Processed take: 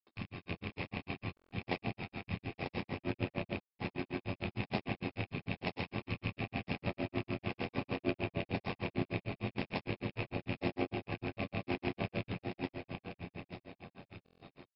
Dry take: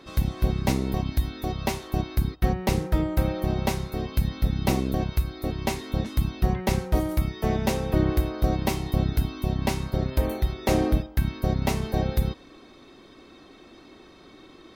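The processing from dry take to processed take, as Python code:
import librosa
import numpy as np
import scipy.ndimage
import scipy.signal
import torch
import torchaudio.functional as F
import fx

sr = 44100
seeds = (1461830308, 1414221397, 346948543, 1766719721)

y = fx.rattle_buzz(x, sr, strikes_db=-27.0, level_db=-17.0)
y = fx.brickwall_lowpass(y, sr, high_hz=5400.0)
y = fx.notch(y, sr, hz=1400.0, q=11.0)
y = fx.echo_feedback(y, sr, ms=920, feedback_pct=37, wet_db=-5.0)
y = fx.room_shoebox(y, sr, seeds[0], volume_m3=190.0, walls='hard', distance_m=0.5)
y = fx.granulator(y, sr, seeds[1], grain_ms=118.0, per_s=6.6, spray_ms=100.0, spread_st=0)
y = y * np.sin(2.0 * np.pi * 45.0 * np.arange(len(y)) / sr)
y = fx.highpass(y, sr, hz=230.0, slope=6)
y = fx.buffer_glitch(y, sr, at_s=(1.35, 3.61, 14.24), block=1024, repeats=6)
y = F.gain(torch.from_numpy(y), -7.5).numpy()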